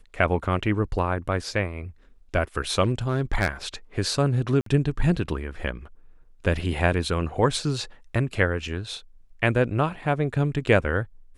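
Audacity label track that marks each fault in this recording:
2.830000	3.480000	clipped -15 dBFS
4.610000	4.660000	gap 53 ms

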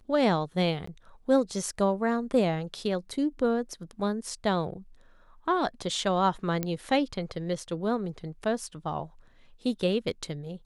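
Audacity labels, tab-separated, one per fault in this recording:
0.860000	0.870000	gap 14 ms
6.630000	6.630000	pop -15 dBFS

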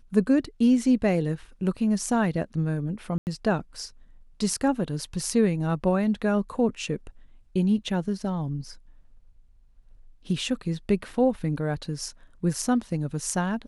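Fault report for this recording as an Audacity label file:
3.180000	3.270000	gap 89 ms

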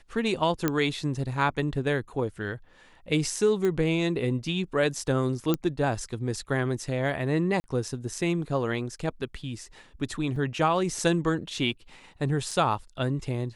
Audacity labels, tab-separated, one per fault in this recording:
0.680000	0.680000	pop -10 dBFS
3.650000	3.650000	pop -17 dBFS
5.540000	5.540000	pop -12 dBFS
7.600000	7.640000	gap 40 ms
10.360000	10.360000	gap 3.5 ms
12.510000	12.510000	gap 3 ms

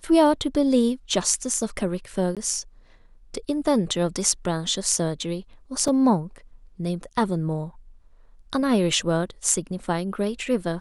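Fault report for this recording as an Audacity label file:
2.350000	2.370000	gap 17 ms
5.880000	5.880000	gap 2.2 ms

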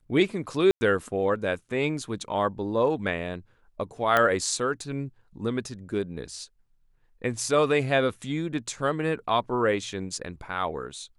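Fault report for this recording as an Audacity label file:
0.710000	0.810000	gap 0.1 s
4.170000	4.170000	pop -9 dBFS

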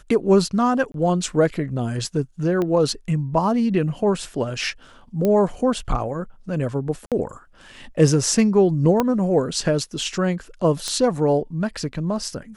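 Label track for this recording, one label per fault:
0.920000	0.940000	gap 22 ms
2.620000	2.620000	pop -13 dBFS
5.250000	5.250000	pop -10 dBFS
7.060000	7.120000	gap 57 ms
9.000000	9.000000	pop -6 dBFS
10.880000	10.880000	pop -12 dBFS

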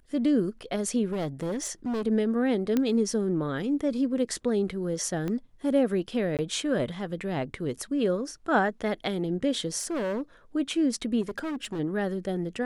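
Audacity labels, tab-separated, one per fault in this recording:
1.120000	2.020000	clipped -26.5 dBFS
2.770000	2.770000	pop -13 dBFS
5.280000	5.280000	pop -20 dBFS
6.370000	6.390000	gap 18 ms
9.790000	10.210000	clipped -26.5 dBFS
11.210000	11.800000	clipped -29 dBFS

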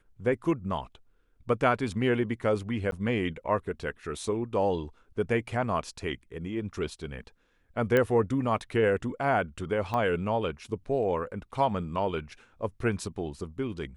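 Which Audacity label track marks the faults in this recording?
2.910000	2.920000	gap
7.970000	7.970000	pop -13 dBFS
9.940000	9.940000	pop -19 dBFS

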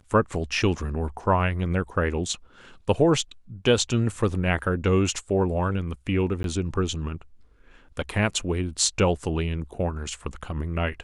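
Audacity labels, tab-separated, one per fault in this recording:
6.430000	6.440000	gap 12 ms

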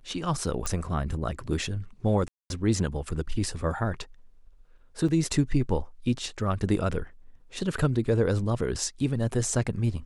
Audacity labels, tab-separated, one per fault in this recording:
0.660000	0.660000	pop
2.280000	2.500000	gap 0.221 s
5.080000	5.080000	gap 5 ms

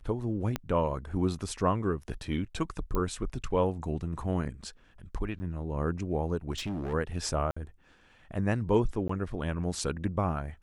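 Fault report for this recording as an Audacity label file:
0.560000	0.560000	pop -16 dBFS
2.950000	2.950000	pop -18 dBFS
5.390000	5.400000	gap 10 ms
6.510000	6.940000	clipped -30.5 dBFS
7.510000	7.570000	gap 55 ms
9.080000	9.090000	gap 14 ms

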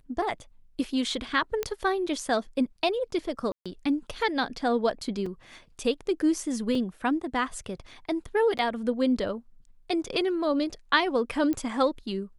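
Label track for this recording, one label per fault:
1.630000	1.630000	pop -14 dBFS
3.520000	3.660000	gap 0.136 s
5.260000	5.260000	gap 4.1 ms
6.750000	6.750000	gap 2.4 ms
8.580000	8.590000	gap 8.2 ms
11.530000	11.530000	pop -18 dBFS

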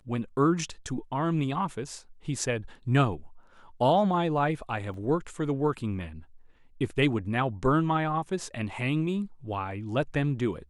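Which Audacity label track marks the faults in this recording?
4.940000	4.940000	gap 3 ms

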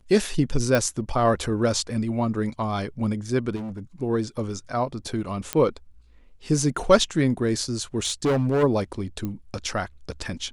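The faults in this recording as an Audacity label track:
0.750000	0.750000	pop
3.550000	3.790000	clipped -30 dBFS
5.530000	5.530000	pop -8 dBFS
8.050000	8.640000	clipped -18 dBFS
9.250000	9.250000	pop -18 dBFS

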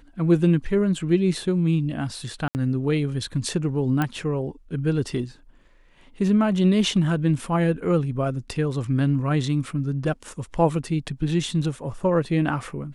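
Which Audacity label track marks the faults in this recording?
2.480000	2.550000	gap 69 ms
4.020000	4.020000	pop -11 dBFS

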